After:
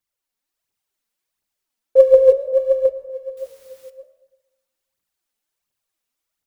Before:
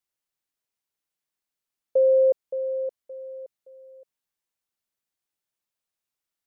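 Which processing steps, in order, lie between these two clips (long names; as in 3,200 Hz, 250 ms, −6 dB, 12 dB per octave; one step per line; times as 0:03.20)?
dynamic equaliser 520 Hz, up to +6 dB, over −32 dBFS
in parallel at +1.5 dB: brickwall limiter −18 dBFS, peak gain reduction 9.5 dB
on the sum: automatic gain control gain up to 4 dB
phase shifter 1.4 Hz, delay 4.6 ms, feedback 62%
0:03.37–0:03.90: bit-depth reduction 8 bits, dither triangular
flanger 0.68 Hz, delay 8.6 ms, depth 9.1 ms, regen −79%
on a send at −15.5 dB: convolution reverb RT60 1.2 s, pre-delay 93 ms
on the sum: level −2 dB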